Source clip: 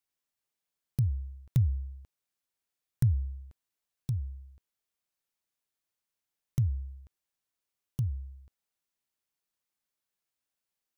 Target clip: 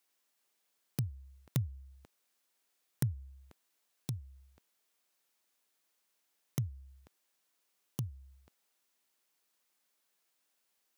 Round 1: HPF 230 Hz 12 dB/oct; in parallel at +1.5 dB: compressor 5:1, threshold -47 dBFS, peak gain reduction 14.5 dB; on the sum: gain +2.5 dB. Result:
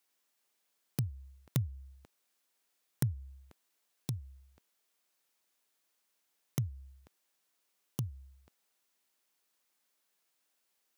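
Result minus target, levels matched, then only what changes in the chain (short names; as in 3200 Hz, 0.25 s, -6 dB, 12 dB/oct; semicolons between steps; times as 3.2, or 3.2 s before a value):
compressor: peak gain reduction -5 dB
change: compressor 5:1, threshold -53.5 dBFS, peak gain reduction 19.5 dB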